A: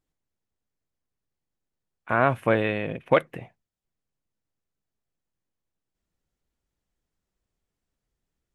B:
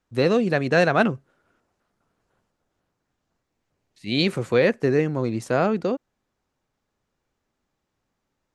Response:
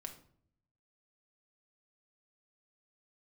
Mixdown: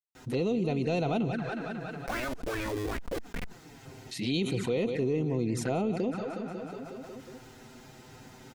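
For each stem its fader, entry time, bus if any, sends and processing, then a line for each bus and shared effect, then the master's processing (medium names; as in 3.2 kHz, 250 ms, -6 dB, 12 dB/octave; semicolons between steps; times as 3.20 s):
-2.0 dB, 0.00 s, no send, no echo send, compression 20:1, threshold -28 dBFS, peak gain reduction 16 dB; Schmitt trigger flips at -36 dBFS; sweeping bell 2.5 Hz 230–2400 Hz +13 dB
-8.0 dB, 0.15 s, no send, echo send -14 dB, comb of notches 570 Hz; saturation -9.5 dBFS, distortion -23 dB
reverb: none
echo: feedback delay 182 ms, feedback 47%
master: peaking EQ 1.1 kHz -3 dB 0.8 oct; touch-sensitive flanger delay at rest 7.9 ms, full sweep at -28.5 dBFS; level flattener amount 70%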